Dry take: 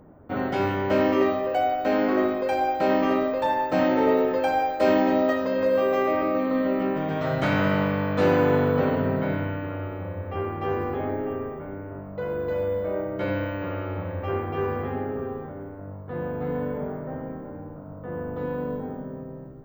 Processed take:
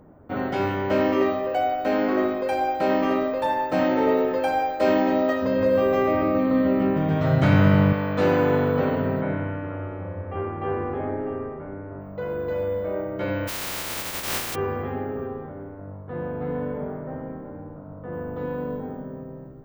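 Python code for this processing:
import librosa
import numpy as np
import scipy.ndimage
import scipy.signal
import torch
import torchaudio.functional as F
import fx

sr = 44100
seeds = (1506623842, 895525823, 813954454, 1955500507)

y = fx.peak_eq(x, sr, hz=11000.0, db=12.5, octaves=0.29, at=(1.78, 4.65))
y = fx.peak_eq(y, sr, hz=91.0, db=12.5, octaves=2.3, at=(5.42, 7.93))
y = fx.lowpass(y, sr, hz=2300.0, slope=12, at=(9.21, 12.01))
y = fx.spec_flatten(y, sr, power=0.13, at=(13.47, 14.54), fade=0.02)
y = fx.high_shelf(y, sr, hz=5300.0, db=-9.0, at=(15.27, 18.13))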